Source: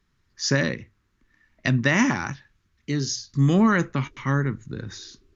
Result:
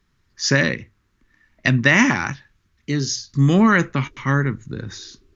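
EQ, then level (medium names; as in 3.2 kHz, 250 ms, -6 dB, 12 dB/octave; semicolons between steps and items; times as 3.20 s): dynamic bell 2.3 kHz, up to +5 dB, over -36 dBFS, Q 1.1; +3.5 dB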